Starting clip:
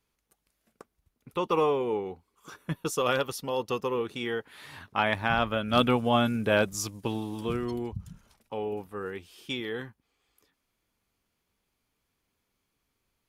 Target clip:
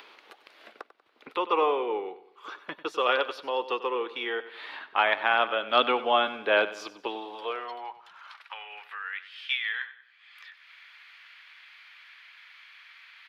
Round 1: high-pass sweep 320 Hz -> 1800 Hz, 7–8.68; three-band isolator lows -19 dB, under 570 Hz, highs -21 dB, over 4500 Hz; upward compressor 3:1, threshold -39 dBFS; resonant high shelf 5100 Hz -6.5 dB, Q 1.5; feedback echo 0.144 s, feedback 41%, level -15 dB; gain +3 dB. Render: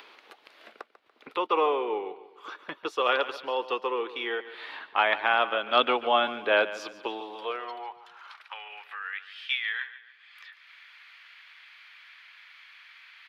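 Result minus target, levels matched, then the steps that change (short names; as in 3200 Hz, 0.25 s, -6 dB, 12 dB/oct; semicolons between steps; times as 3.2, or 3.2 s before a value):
echo 49 ms late
change: feedback echo 95 ms, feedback 41%, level -15 dB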